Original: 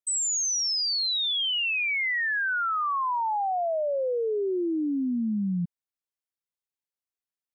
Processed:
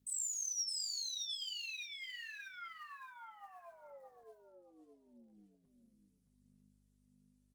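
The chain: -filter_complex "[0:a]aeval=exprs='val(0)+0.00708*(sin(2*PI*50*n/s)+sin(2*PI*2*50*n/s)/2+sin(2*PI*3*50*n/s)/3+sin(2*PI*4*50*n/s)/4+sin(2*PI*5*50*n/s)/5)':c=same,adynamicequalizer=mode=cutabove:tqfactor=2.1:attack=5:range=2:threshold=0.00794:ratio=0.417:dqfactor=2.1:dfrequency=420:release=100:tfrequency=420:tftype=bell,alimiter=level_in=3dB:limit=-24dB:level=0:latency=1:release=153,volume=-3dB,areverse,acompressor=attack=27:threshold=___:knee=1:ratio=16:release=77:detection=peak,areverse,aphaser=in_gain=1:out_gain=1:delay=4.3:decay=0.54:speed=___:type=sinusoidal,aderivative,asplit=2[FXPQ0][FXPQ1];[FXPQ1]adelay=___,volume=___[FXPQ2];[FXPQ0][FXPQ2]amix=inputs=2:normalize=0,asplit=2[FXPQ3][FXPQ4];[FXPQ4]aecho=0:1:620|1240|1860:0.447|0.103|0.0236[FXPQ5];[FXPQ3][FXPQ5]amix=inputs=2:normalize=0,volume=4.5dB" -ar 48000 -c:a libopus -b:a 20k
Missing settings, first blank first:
-44dB, 0.76, 25, -9dB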